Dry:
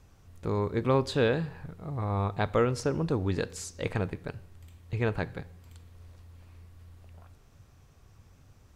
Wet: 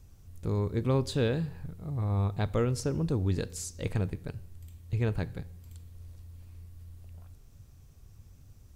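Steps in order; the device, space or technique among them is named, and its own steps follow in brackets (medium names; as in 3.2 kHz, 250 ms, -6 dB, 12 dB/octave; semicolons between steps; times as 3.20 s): smiley-face EQ (bass shelf 97 Hz +6.5 dB; peaking EQ 1.2 kHz -8 dB 3 oct; treble shelf 9.3 kHz +8 dB)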